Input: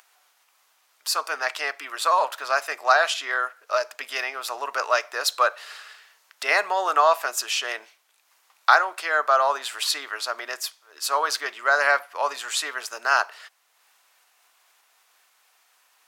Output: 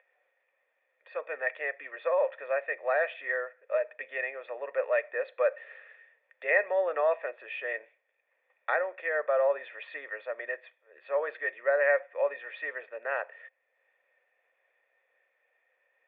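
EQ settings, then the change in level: cascade formant filter e; peaking EQ 490 Hz +2 dB; peaking EQ 3.4 kHz +3 dB 0.25 oct; +6.0 dB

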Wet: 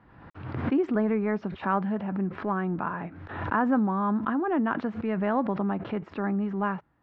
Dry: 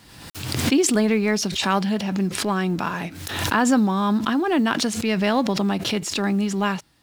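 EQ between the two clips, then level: four-pole ladder low-pass 1.8 kHz, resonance 25%; 0.0 dB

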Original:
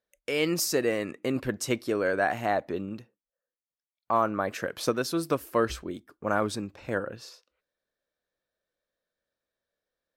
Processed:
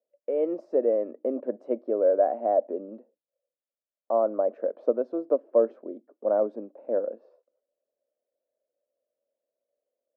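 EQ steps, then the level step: elliptic high-pass 230 Hz, stop band 50 dB; resonant low-pass 590 Hz, resonance Q 4.9; -4.5 dB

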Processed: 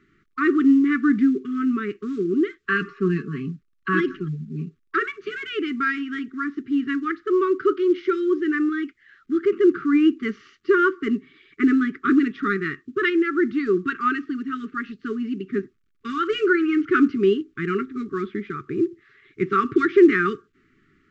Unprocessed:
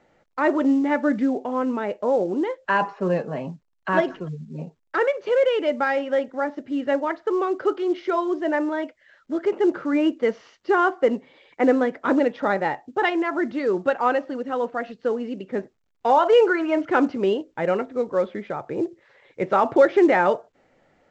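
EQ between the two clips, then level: brick-wall FIR band-stop 430–1100 Hz; treble shelf 4.2 kHz -11.5 dB; +4.0 dB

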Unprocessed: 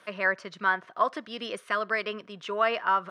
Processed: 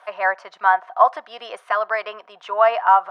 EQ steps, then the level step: resonant high-pass 780 Hz, resonance Q 7; treble shelf 2.3 kHz -8.5 dB; +4.5 dB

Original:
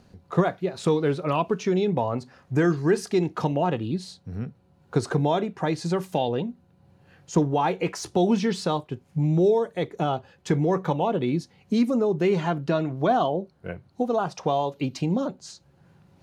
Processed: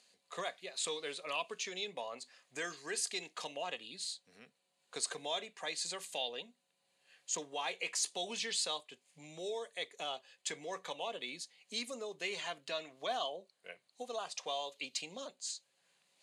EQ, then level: cabinet simulation 290–8800 Hz, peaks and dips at 340 Hz -9 dB, 870 Hz -8 dB, 1.4 kHz -10 dB, 5.6 kHz -10 dB; differentiator; +7.5 dB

